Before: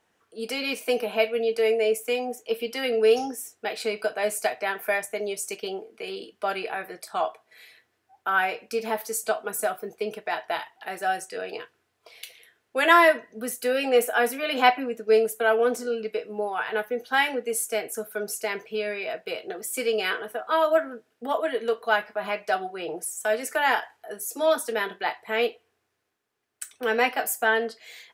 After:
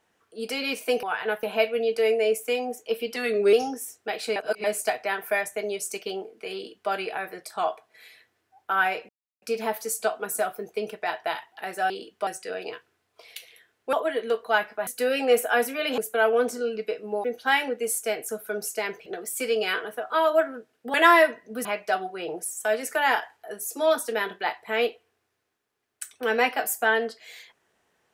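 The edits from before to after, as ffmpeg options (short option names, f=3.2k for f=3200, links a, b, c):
-filter_complex "[0:a]asplit=17[a][b][c][d][e][f][g][h][i][j][k][l][m][n][o][p][q];[a]atrim=end=1.032[r];[b]atrim=start=16.498:end=16.902[s];[c]atrim=start=1.028:end=2.764[t];[d]atrim=start=2.76:end=3.1,asetpts=PTS-STARTPTS,asetrate=40572,aresample=44100[u];[e]atrim=start=3.096:end=3.932[v];[f]atrim=start=3.928:end=4.212,asetpts=PTS-STARTPTS,areverse[w];[g]atrim=start=4.208:end=8.66,asetpts=PTS-STARTPTS,afade=t=out:st=4.448:d=0.004:c=hsin,apad=pad_dur=0.33[x];[h]atrim=start=8.66:end=11.142,asetpts=PTS-STARTPTS,afade=t=in:d=0.004:c=hsin[y];[i]atrim=start=6.108:end=6.482[z];[j]atrim=start=11.138:end=12.802[aa];[k]atrim=start=21.308:end=22.252[ab];[l]atrim=start=13.508:end=14.622[ac];[m]atrim=start=15.238:end=16.502[ad];[n]atrim=start=16.898:end=18.722[ae];[o]atrim=start=19.428:end=21.312[af];[p]atrim=start=12.798:end=13.512[ag];[q]atrim=start=22.248[ah];[r][s]acrossfade=d=0.004:c1=hsin:c2=hsin[ai];[ai][t]acrossfade=d=0.004:c1=hsin:c2=hsin[aj];[aj][u]acrossfade=d=0.004:c1=hsin:c2=hsin[ak];[ak][v]acrossfade=d=0.004:c1=hsin:c2=hsin[al];[al][w]acrossfade=d=0.004:c1=hsin:c2=hsin[am];[x][y]concat=n=2:v=0:a=1[an];[am][an]acrossfade=d=0.004:c1=hsin:c2=hsin[ao];[ao][z]acrossfade=d=0.004:c1=hsin:c2=hsin[ap];[ap][aa]acrossfade=d=0.004:c1=hsin:c2=hsin[aq];[aq][ab]acrossfade=d=0.004:c1=hsin:c2=hsin[ar];[ar][ac]acrossfade=d=0.004:c1=hsin:c2=hsin[as];[as][ad]acrossfade=d=0.004:c1=hsin:c2=hsin[at];[at][ae]acrossfade=d=0.004:c1=hsin:c2=hsin[au];[au][af]acrossfade=d=0.004:c1=hsin:c2=hsin[av];[av][ag]acrossfade=d=0.004:c1=hsin:c2=hsin[aw];[aw][ah]acrossfade=d=0.004:c1=hsin:c2=hsin"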